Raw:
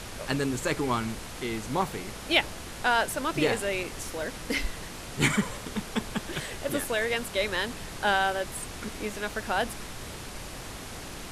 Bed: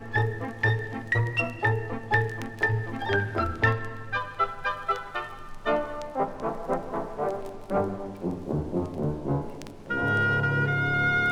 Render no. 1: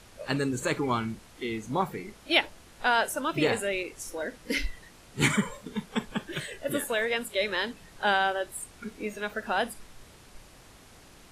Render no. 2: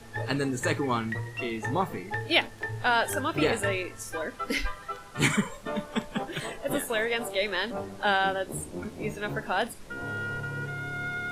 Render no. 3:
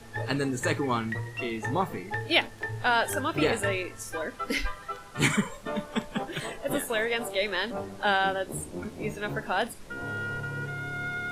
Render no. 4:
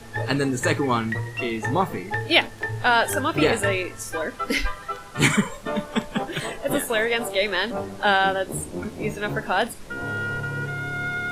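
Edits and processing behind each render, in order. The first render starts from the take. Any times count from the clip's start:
noise print and reduce 13 dB
add bed -9.5 dB
nothing audible
gain +5.5 dB

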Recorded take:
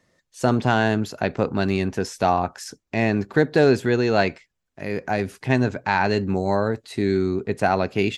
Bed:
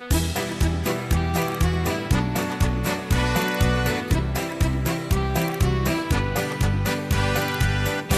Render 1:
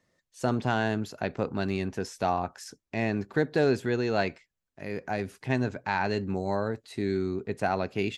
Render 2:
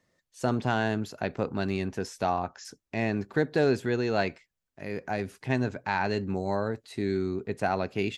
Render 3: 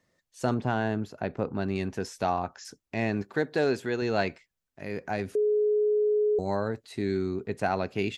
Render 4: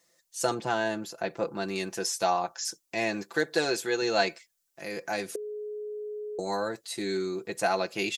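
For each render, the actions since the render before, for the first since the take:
gain -7.5 dB
2.24–2.65 Chebyshev low-pass 7200 Hz, order 10
0.54–1.76 high shelf 2300 Hz -9.5 dB; 3.22–4.02 low shelf 180 Hz -9.5 dB; 5.35–6.39 bleep 421 Hz -21 dBFS
tone controls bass -13 dB, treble +13 dB; comb 5.9 ms, depth 73%

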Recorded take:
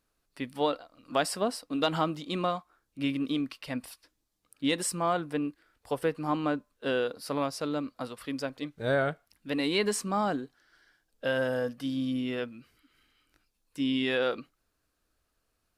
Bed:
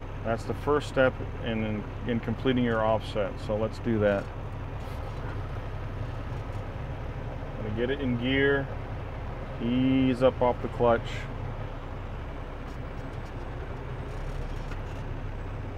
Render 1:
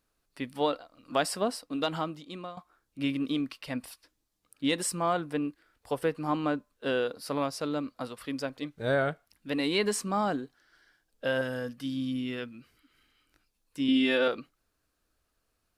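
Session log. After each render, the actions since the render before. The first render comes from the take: 1.51–2.57 fade out, to -15 dB; 11.41–12.54 bell 650 Hz -7.5 dB 1.4 oct; 13.88–14.28 comb 3.4 ms, depth 95%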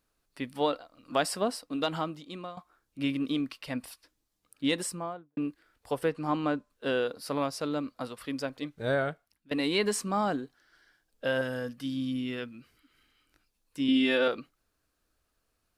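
4.7–5.37 studio fade out; 6.09–6.7 LPF 9500 Hz; 8.65–9.51 fade out equal-power, to -19.5 dB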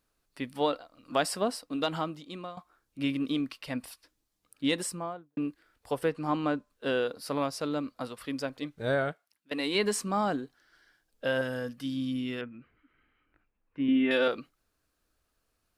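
9.11–9.74 HPF 840 Hz -> 280 Hz 6 dB/oct; 12.41–14.11 LPF 2300 Hz 24 dB/oct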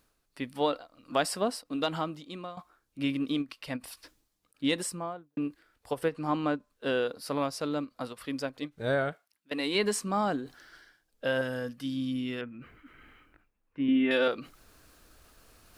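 reverse; upward compressor, threshold -41 dBFS; reverse; ending taper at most 430 dB/s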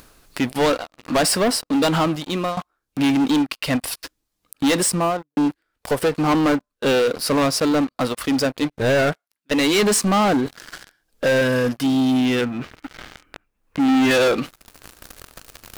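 sample leveller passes 5; upward compressor, threshold -26 dBFS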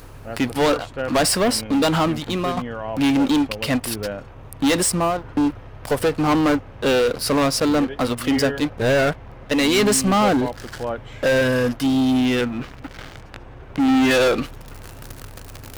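add bed -4 dB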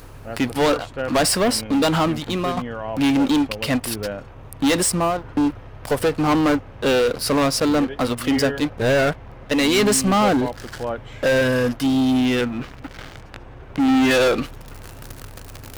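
nothing audible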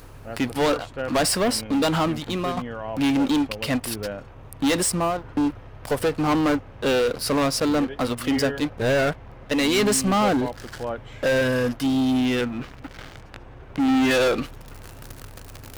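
gain -3 dB

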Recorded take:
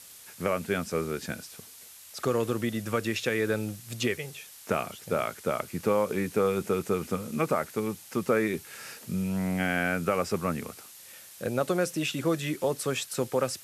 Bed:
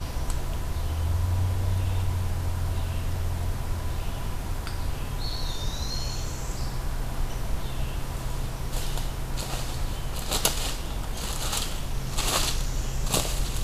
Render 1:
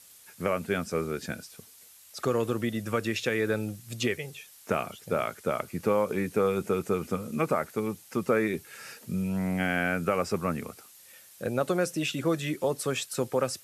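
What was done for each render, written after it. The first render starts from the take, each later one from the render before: denoiser 6 dB, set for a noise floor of -49 dBFS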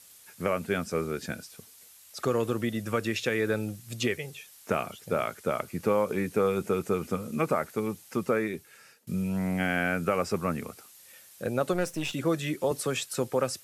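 8.16–9.07 fade out, to -21.5 dB; 11.73–12.13 half-wave gain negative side -7 dB; 12.71–13.18 three-band squash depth 40%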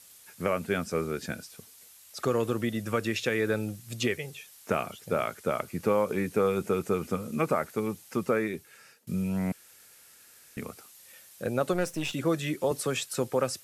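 9.52–10.57 room tone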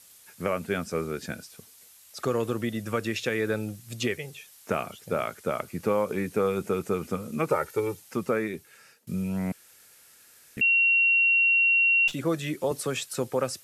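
7.5–8 comb 2.2 ms, depth 83%; 10.61–12.08 bleep 2740 Hz -18 dBFS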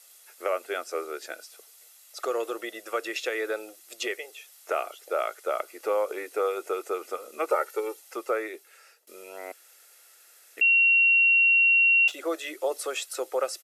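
elliptic high-pass 340 Hz, stop band 50 dB; comb 1.5 ms, depth 37%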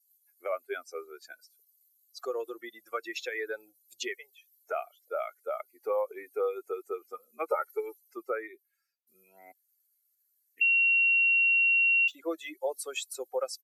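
per-bin expansion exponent 2; compressor 2.5:1, threshold -24 dBFS, peak gain reduction 4 dB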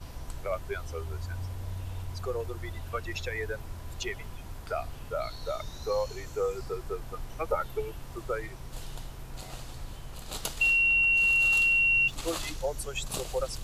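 add bed -11 dB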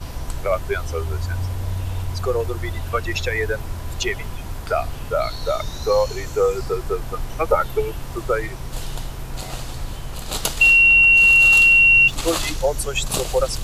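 gain +11.5 dB

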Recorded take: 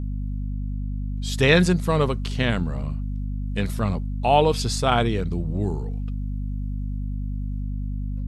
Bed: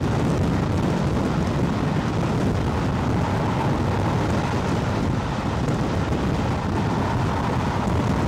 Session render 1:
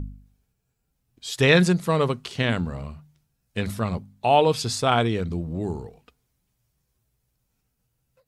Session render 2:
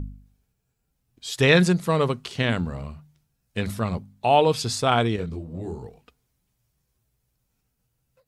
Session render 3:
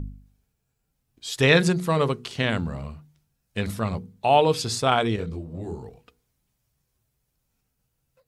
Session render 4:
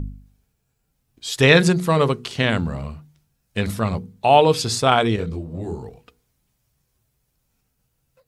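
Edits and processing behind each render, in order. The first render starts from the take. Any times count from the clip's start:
de-hum 50 Hz, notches 5
5.16–5.83 detuned doubles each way 45 cents
notches 60/120/180/240/300/360/420/480 Hz
gain +4.5 dB; limiter -1 dBFS, peak gain reduction 1 dB

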